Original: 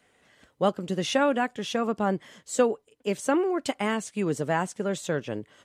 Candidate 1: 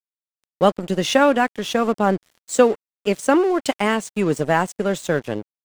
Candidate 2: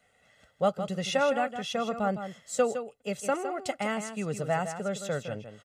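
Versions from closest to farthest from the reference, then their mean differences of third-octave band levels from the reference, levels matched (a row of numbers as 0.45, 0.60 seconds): 1, 2; 3.5, 4.5 decibels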